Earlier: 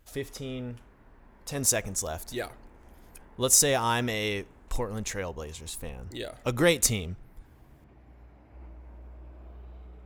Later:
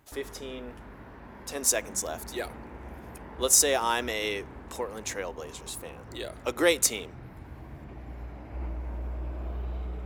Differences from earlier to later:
speech: add HPF 290 Hz 24 dB/oct; background +12.0 dB

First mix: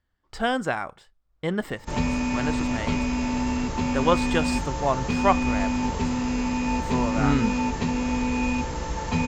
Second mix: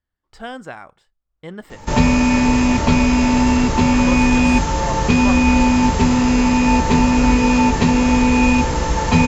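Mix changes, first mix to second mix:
speech -7.0 dB; background +11.0 dB

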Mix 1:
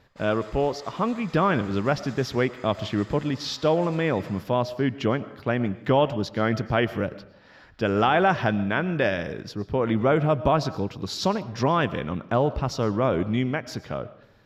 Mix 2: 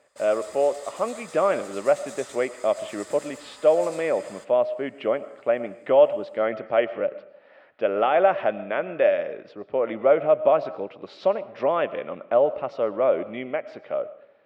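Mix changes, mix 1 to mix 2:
speech: add speaker cabinet 440–2500 Hz, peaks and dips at 580 Hz +10 dB, 970 Hz -6 dB, 1600 Hz -7 dB; master: remove running mean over 5 samples

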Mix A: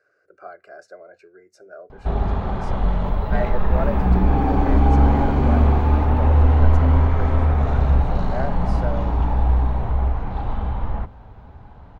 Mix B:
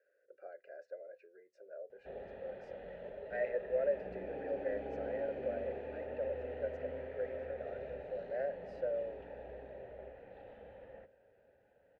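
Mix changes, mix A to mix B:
first sound -7.0 dB; master: add vowel filter e

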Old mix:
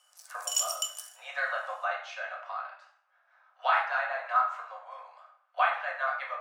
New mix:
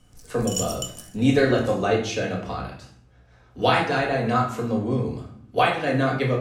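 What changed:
speech: remove band-pass 1300 Hz, Q 2; master: remove steep high-pass 560 Hz 96 dB/oct

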